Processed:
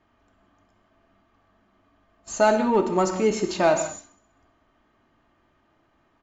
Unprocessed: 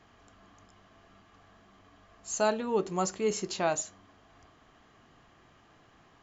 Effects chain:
noise gate −50 dBFS, range −14 dB
high-shelf EQ 3,500 Hz −11.5 dB
comb filter 3.3 ms, depth 40%
in parallel at −7 dB: gain into a clipping stage and back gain 26.5 dB
on the sum: feedback echo with a high-pass in the loop 65 ms, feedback 54%, high-pass 840 Hz, level −18.5 dB
on a send at −7 dB: convolution reverb, pre-delay 3 ms
on the sum: level +6 dB

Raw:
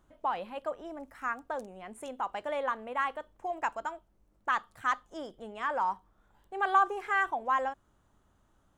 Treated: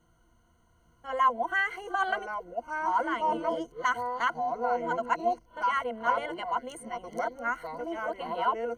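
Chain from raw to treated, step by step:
played backwards from end to start
delay with pitch and tempo change per echo 767 ms, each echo −4 semitones, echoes 2, each echo −6 dB
EQ curve with evenly spaced ripples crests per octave 1.9, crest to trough 17 dB

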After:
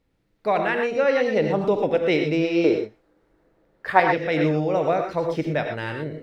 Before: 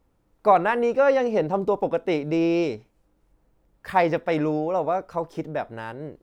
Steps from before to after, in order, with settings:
0:02.64–0:04.00: flat-topped bell 700 Hz +11 dB 2.9 octaves
reverb whose tail is shaped and stops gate 140 ms rising, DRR 4 dB
speech leveller within 5 dB 0.5 s
octave-band graphic EQ 125/250/500/1,000/2,000/4,000 Hz +6/+3/+4/−4/+9/+9 dB
level −5.5 dB

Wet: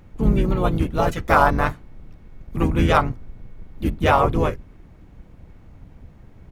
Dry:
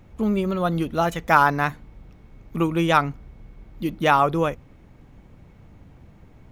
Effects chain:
sub-octave generator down 2 octaves, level +3 dB
pitch-shifted copies added −7 semitones −4 dB, −3 semitones −5 dB
level −1.5 dB

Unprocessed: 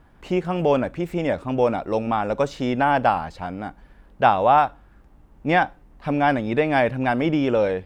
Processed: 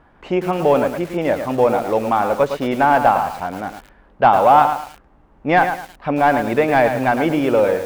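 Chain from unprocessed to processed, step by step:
mid-hump overdrive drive 11 dB, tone 1,300 Hz, clips at −3 dBFS
feedback echo at a low word length 109 ms, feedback 35%, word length 6 bits, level −7.5 dB
level +3 dB

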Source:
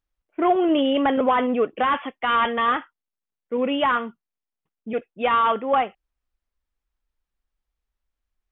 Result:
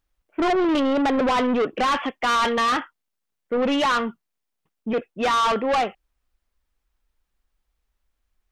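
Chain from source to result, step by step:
0:00.79–0:01.33: low-pass filter 1,700 Hz → 2,400 Hz 12 dB per octave
soft clipping −25 dBFS, distortion −8 dB
level +7 dB

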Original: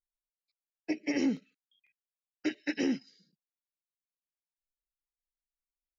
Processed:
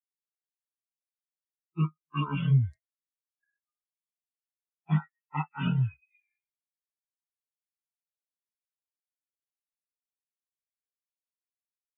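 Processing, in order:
spectral dynamics exaggerated over time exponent 3
wrong playback speed 15 ips tape played at 7.5 ips
comb filter 6.5 ms, depth 32%
level +6.5 dB

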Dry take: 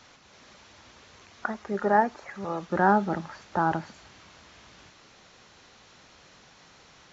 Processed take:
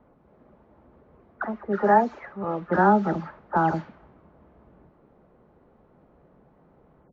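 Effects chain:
every frequency bin delayed by itself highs early, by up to 216 ms
low-pass that shuts in the quiet parts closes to 570 Hz, open at −21 dBFS
high-shelf EQ 3,300 Hz −10 dB
level +4 dB

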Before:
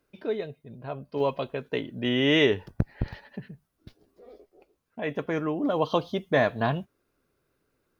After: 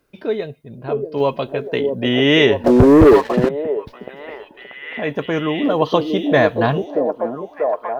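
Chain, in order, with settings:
echo through a band-pass that steps 636 ms, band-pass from 360 Hz, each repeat 0.7 octaves, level −0.5 dB
0:02.64–0:03.49: leveller curve on the samples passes 3
level +8 dB

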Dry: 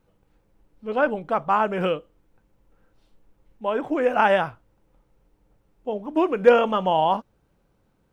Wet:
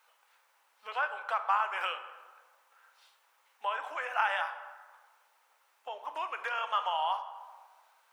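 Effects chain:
downward compressor 5 to 1, threshold −33 dBFS, peak gain reduction 21.5 dB
high-pass filter 920 Hz 24 dB per octave
dense smooth reverb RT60 1.5 s, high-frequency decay 0.55×, DRR 8.5 dB
level +9 dB

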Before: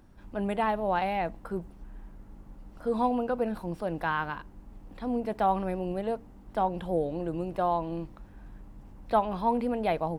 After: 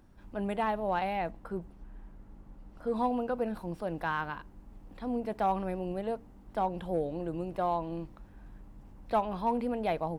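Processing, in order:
in parallel at −6 dB: hard clipping −20.5 dBFS, distortion −19 dB
0:01.31–0:02.96: on the sum: high-shelf EQ 5,100 Hz −5 dB
level −6.5 dB

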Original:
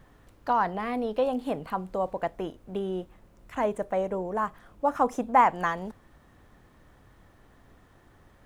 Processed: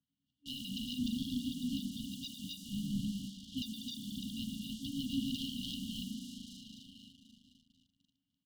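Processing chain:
partials spread apart or drawn together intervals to 77%
on a send: multi-tap delay 100/133/256/289 ms −6.5/−19/−7/−3 dB
on the sum: leveller curve on the samples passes 2
formant filter e
mains-hum notches 60/120/180/240/300/360/420/480 Hz
downward compressor 4 to 1, threshold −31 dBFS, peak gain reduction 11 dB
spring reverb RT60 3.9 s, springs 37/41 ms, chirp 35 ms, DRR 6.5 dB
leveller curve on the samples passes 3
brick-wall band-stop 280–2,800 Hz
level +7.5 dB

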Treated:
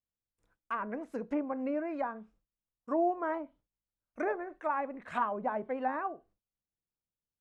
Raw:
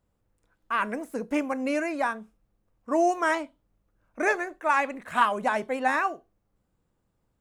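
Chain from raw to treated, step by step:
treble cut that deepens with the level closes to 970 Hz, closed at −23.5 dBFS
noise gate with hold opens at −56 dBFS
level −5.5 dB

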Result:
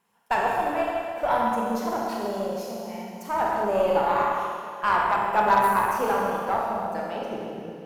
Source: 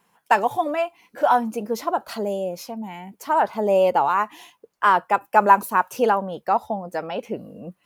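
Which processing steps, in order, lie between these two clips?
four-comb reverb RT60 2.4 s, combs from 27 ms, DRR −3.5 dB
harmonic generator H 6 −25 dB, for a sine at 0 dBFS
level −8 dB

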